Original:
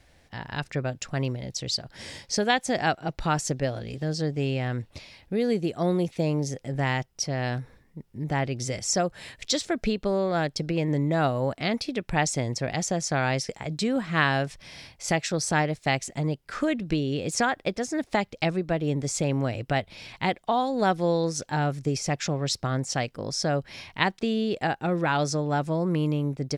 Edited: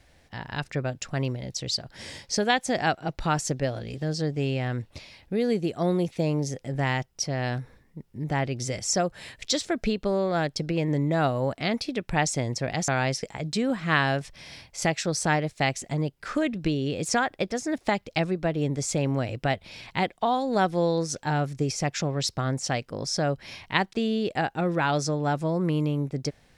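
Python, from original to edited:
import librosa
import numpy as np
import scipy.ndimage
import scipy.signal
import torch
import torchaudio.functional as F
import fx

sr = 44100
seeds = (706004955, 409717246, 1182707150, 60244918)

y = fx.edit(x, sr, fx.cut(start_s=12.88, length_s=0.26), tone=tone)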